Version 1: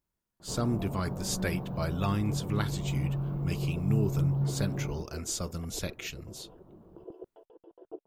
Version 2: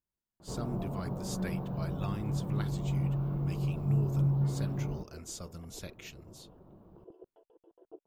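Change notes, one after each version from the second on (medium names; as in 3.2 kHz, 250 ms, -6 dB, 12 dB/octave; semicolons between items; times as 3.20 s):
speech -9.0 dB; second sound -7.5 dB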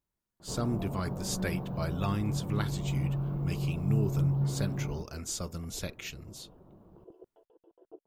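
speech +7.0 dB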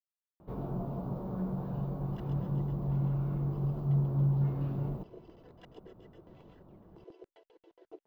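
speech: muted; second sound: remove boxcar filter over 21 samples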